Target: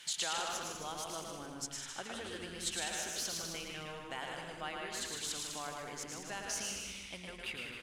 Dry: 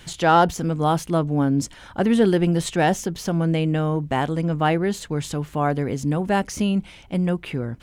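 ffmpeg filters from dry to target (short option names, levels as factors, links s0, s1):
-filter_complex "[0:a]acompressor=threshold=0.0562:ratio=6,bandpass=f=4000:t=q:w=0.57:csg=0,asplit=2[s0][s1];[s1]aecho=0:1:110|198|268.4|324.7|369.8:0.631|0.398|0.251|0.158|0.1[s2];[s0][s2]amix=inputs=2:normalize=0,crystalizer=i=1:c=0,asplit=2[s3][s4];[s4]asplit=5[s5][s6][s7][s8][s9];[s5]adelay=152,afreqshift=-140,volume=0.473[s10];[s6]adelay=304,afreqshift=-280,volume=0.188[s11];[s7]adelay=456,afreqshift=-420,volume=0.0759[s12];[s8]adelay=608,afreqshift=-560,volume=0.0302[s13];[s9]adelay=760,afreqshift=-700,volume=0.0122[s14];[s10][s11][s12][s13][s14]amix=inputs=5:normalize=0[s15];[s3][s15]amix=inputs=2:normalize=0,volume=0.596"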